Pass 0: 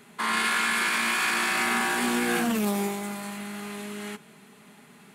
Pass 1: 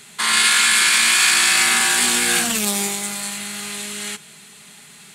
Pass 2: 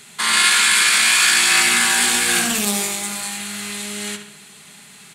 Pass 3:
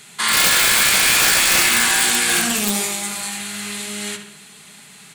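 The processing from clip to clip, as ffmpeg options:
ffmpeg -i in.wav -af "equalizer=frequency=250:width_type=o:width=1:gain=-10,equalizer=frequency=500:width_type=o:width=1:gain=-6,equalizer=frequency=1000:width_type=o:width=1:gain=-5,equalizer=frequency=4000:width_type=o:width=1:gain=6,equalizer=frequency=8000:width_type=o:width=1:gain=10,volume=8dB" out.wav
ffmpeg -i in.wav -filter_complex "[0:a]asplit=2[link_01][link_02];[link_02]adelay=68,lowpass=frequency=3700:poles=1,volume=-7dB,asplit=2[link_03][link_04];[link_04]adelay=68,lowpass=frequency=3700:poles=1,volume=0.51,asplit=2[link_05][link_06];[link_06]adelay=68,lowpass=frequency=3700:poles=1,volume=0.51,asplit=2[link_07][link_08];[link_08]adelay=68,lowpass=frequency=3700:poles=1,volume=0.51,asplit=2[link_09][link_10];[link_10]adelay=68,lowpass=frequency=3700:poles=1,volume=0.51,asplit=2[link_11][link_12];[link_12]adelay=68,lowpass=frequency=3700:poles=1,volume=0.51[link_13];[link_01][link_03][link_05][link_07][link_09][link_11][link_13]amix=inputs=7:normalize=0" out.wav
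ffmpeg -i in.wav -af "aeval=exprs='(mod(2.37*val(0)+1,2)-1)/2.37':channel_layout=same,flanger=delay=6.2:depth=5.7:regen=-64:speed=1:shape=sinusoidal,volume=4.5dB" out.wav

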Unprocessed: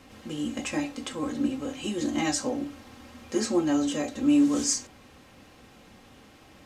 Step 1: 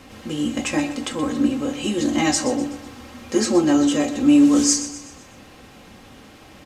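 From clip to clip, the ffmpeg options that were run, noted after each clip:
ffmpeg -i in.wav -af "aecho=1:1:125|250|375|500|625:0.224|0.105|0.0495|0.0232|0.0109,volume=7.5dB" out.wav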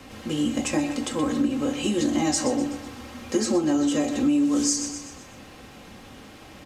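ffmpeg -i in.wav -filter_complex "[0:a]acrossover=split=170|1000|4200[link_01][link_02][link_03][link_04];[link_03]alimiter=level_in=2.5dB:limit=-24dB:level=0:latency=1:release=111,volume=-2.5dB[link_05];[link_01][link_02][link_05][link_04]amix=inputs=4:normalize=0,acompressor=threshold=-19dB:ratio=6" out.wav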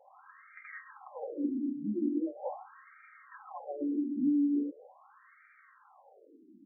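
ffmpeg -i in.wav -af "afftfilt=real='re*between(b*sr/1024,240*pow(1700/240,0.5+0.5*sin(2*PI*0.41*pts/sr))/1.41,240*pow(1700/240,0.5+0.5*sin(2*PI*0.41*pts/sr))*1.41)':imag='im*between(b*sr/1024,240*pow(1700/240,0.5+0.5*sin(2*PI*0.41*pts/sr))/1.41,240*pow(1700/240,0.5+0.5*sin(2*PI*0.41*pts/sr))*1.41)':win_size=1024:overlap=0.75,volume=-6.5dB" out.wav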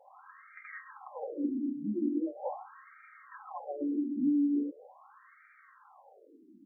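ffmpeg -i in.wav -af "equalizer=frequency=1000:width=1.5:gain=3" out.wav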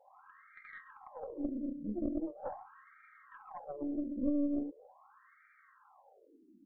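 ffmpeg -i in.wav -af "aeval=exprs='0.1*(cos(1*acos(clip(val(0)/0.1,-1,1)))-cos(1*PI/2))+0.0447*(cos(2*acos(clip(val(0)/0.1,-1,1)))-cos(2*PI/2))+0.00251*(cos(4*acos(clip(val(0)/0.1,-1,1)))-cos(4*PI/2))':channel_layout=same,volume=-5dB" out.wav

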